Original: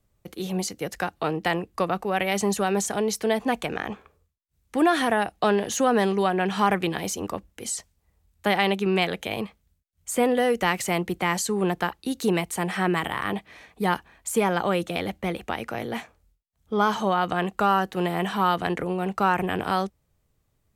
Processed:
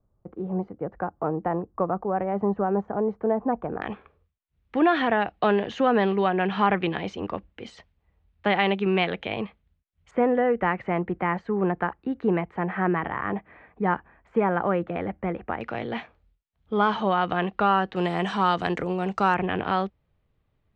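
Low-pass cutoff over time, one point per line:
low-pass 24 dB/octave
1.2 kHz
from 3.82 s 3.3 kHz
from 10.11 s 1.9 kHz
from 15.61 s 3.7 kHz
from 17.96 s 6.7 kHz
from 19.34 s 3.5 kHz

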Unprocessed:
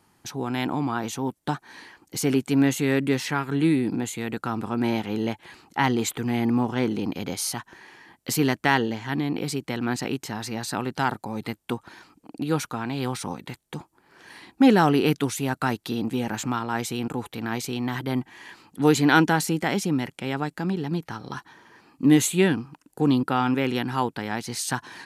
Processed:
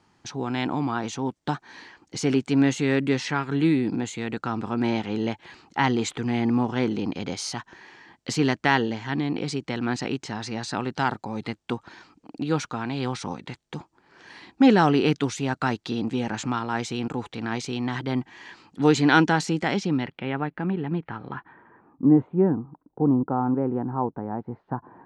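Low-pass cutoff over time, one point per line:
low-pass 24 dB/octave
19.66 s 6.8 kHz
20.36 s 2.7 kHz
21.27 s 2.7 kHz
22.11 s 1 kHz

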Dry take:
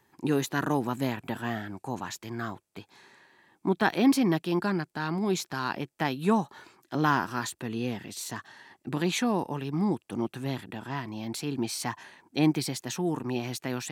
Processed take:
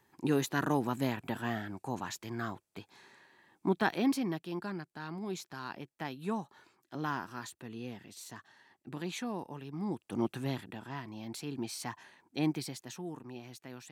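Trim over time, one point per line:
3.67 s -3 dB
4.39 s -11 dB
9.78 s -11 dB
10.26 s -0.5 dB
10.91 s -7.5 dB
12.52 s -7.5 dB
13.32 s -15 dB

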